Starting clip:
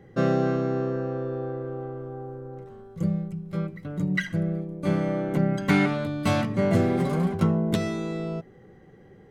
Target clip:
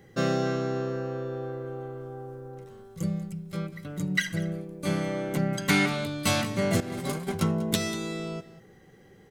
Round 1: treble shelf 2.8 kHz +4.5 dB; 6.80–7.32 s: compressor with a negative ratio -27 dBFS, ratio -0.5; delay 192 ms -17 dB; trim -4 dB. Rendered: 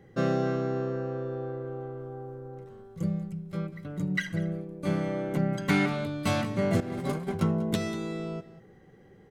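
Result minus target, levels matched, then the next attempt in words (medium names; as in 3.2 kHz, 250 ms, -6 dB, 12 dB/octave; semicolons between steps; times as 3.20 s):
4 kHz band -6.0 dB
treble shelf 2.8 kHz +16.5 dB; 6.80–7.32 s: compressor with a negative ratio -27 dBFS, ratio -0.5; delay 192 ms -17 dB; trim -4 dB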